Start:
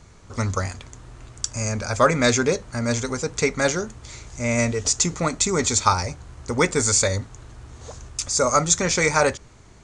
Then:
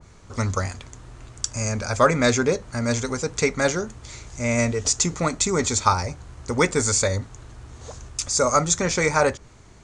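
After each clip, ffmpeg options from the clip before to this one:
ffmpeg -i in.wav -af "adynamicequalizer=threshold=0.0282:dfrequency=1900:dqfactor=0.7:tfrequency=1900:tqfactor=0.7:attack=5:release=100:ratio=0.375:range=2.5:mode=cutabove:tftype=highshelf" out.wav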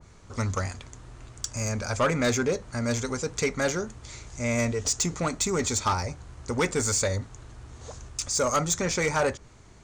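ffmpeg -i in.wav -af "asoftclip=type=tanh:threshold=-14dB,volume=-3dB" out.wav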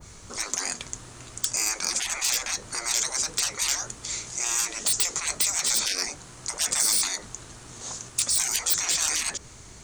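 ffmpeg -i in.wav -af "afftfilt=real='re*lt(hypot(re,im),0.0501)':imag='im*lt(hypot(re,im),0.0501)':win_size=1024:overlap=0.75,crystalizer=i=3:c=0,volume=4dB" out.wav

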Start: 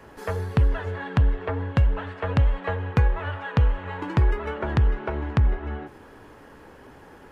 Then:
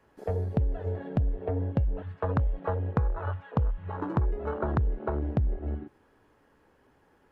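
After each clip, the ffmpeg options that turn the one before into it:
ffmpeg -i in.wav -af "afwtdn=0.0447,acompressor=threshold=-23dB:ratio=6" out.wav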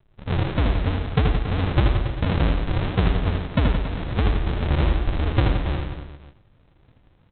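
ffmpeg -i in.wav -af "aresample=8000,acrusher=samples=29:mix=1:aa=0.000001:lfo=1:lforange=17.4:lforate=3,aresample=44100,aecho=1:1:80|172|277.8|399.5|539.4:0.631|0.398|0.251|0.158|0.1,volume=5.5dB" out.wav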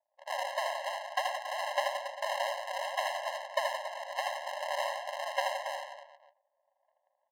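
ffmpeg -i in.wav -af "adynamicsmooth=sensitivity=6:basefreq=520,afftfilt=real='re*eq(mod(floor(b*sr/1024/540),2),1)':imag='im*eq(mod(floor(b*sr/1024/540),2),1)':win_size=1024:overlap=0.75" out.wav

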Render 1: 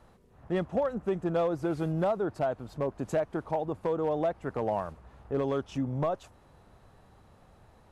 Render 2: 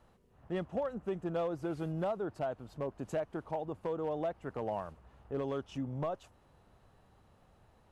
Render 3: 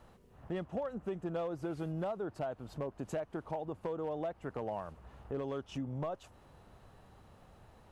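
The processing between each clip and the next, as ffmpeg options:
ffmpeg -i in.wav -af "equalizer=frequency=2900:width=7.5:gain=4.5,volume=-6.5dB" out.wav
ffmpeg -i in.wav -af "acompressor=threshold=-46dB:ratio=2,volume=5.5dB" out.wav

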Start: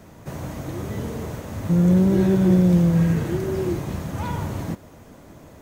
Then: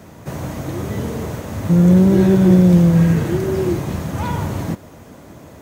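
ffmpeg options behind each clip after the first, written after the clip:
ffmpeg -i in.wav -af "highpass=56,volume=5.5dB" out.wav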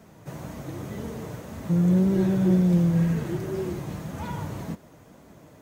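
ffmpeg -i in.wav -af "flanger=delay=4.4:depth=2.4:regen=-42:speed=1.9:shape=sinusoidal,volume=-6.5dB" out.wav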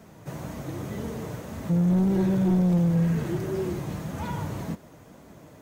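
ffmpeg -i in.wav -af "asoftclip=type=tanh:threshold=-18.5dB,volume=1.5dB" out.wav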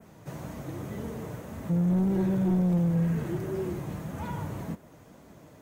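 ffmpeg -i in.wav -af "adynamicequalizer=threshold=0.001:dfrequency=4700:dqfactor=1:tfrequency=4700:tqfactor=1:attack=5:release=100:ratio=0.375:range=2.5:mode=cutabove:tftype=bell,volume=-3dB" out.wav

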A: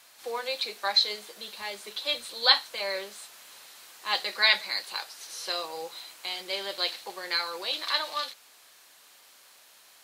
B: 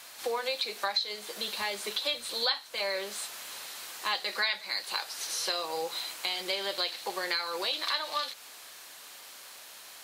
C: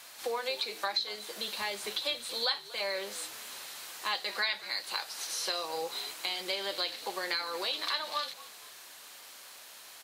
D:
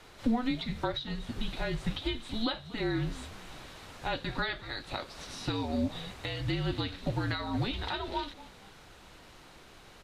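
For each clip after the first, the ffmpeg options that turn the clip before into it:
ffmpeg -i in.wav -af "acompressor=threshold=-37dB:ratio=4,volume=7.5dB" out.wav
ffmpeg -i in.wav -filter_complex "[0:a]asplit=4[link_01][link_02][link_03][link_04];[link_02]adelay=236,afreqshift=-74,volume=-18.5dB[link_05];[link_03]adelay=472,afreqshift=-148,volume=-27.6dB[link_06];[link_04]adelay=708,afreqshift=-222,volume=-36.7dB[link_07];[link_01][link_05][link_06][link_07]amix=inputs=4:normalize=0,volume=-2dB" out.wav
ffmpeg -i in.wav -af "afreqshift=-240,aemphasis=mode=reproduction:type=riaa" out.wav

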